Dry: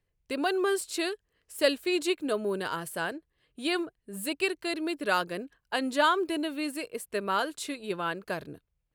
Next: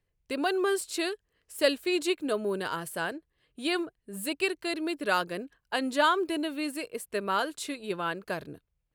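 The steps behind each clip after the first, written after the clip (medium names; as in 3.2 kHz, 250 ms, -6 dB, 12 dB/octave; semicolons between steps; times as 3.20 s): no audible change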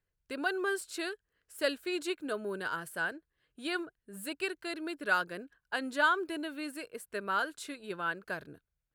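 peaking EQ 1.5 kHz +9.5 dB 0.38 oct; trim -7 dB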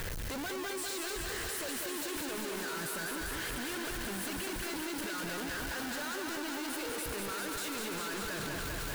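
one-bit comparator; thinning echo 198 ms, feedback 81%, high-pass 180 Hz, level -3.5 dB; level flattener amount 100%; trim -6 dB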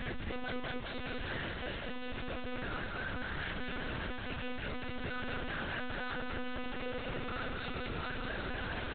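early reflections 13 ms -16.5 dB, 34 ms -4.5 dB; monotone LPC vocoder at 8 kHz 250 Hz; trim -1 dB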